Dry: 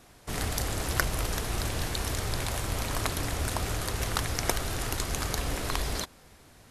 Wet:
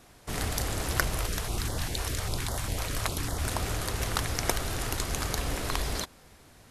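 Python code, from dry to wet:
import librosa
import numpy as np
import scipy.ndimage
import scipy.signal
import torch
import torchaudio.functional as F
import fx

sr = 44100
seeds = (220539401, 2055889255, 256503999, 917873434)

y = fx.filter_held_notch(x, sr, hz=10.0, low_hz=210.0, high_hz=2500.0, at=(1.18, 3.44))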